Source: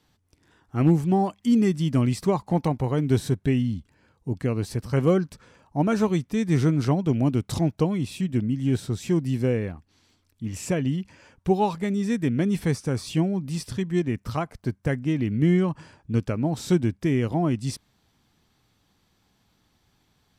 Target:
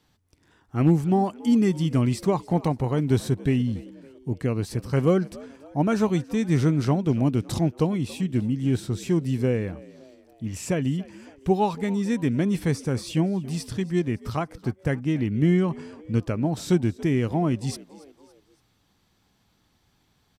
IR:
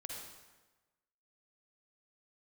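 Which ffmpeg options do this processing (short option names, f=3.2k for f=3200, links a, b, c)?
-filter_complex "[0:a]asplit=4[a][b][c][d];[b]adelay=281,afreqshift=69,volume=-21dB[e];[c]adelay=562,afreqshift=138,volume=-27.6dB[f];[d]adelay=843,afreqshift=207,volume=-34.1dB[g];[a][e][f][g]amix=inputs=4:normalize=0"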